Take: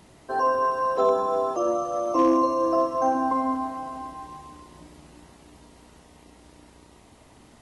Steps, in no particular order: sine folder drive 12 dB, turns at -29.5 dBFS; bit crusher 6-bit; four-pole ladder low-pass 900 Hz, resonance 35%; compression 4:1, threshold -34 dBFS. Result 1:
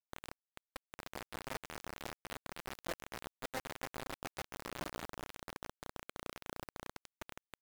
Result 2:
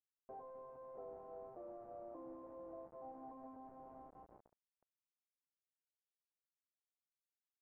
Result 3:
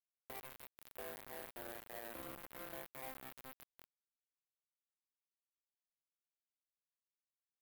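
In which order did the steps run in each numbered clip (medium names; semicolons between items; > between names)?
compression > sine folder > four-pole ladder low-pass > bit crusher; compression > bit crusher > sine folder > four-pole ladder low-pass; compression > four-pole ladder low-pass > bit crusher > sine folder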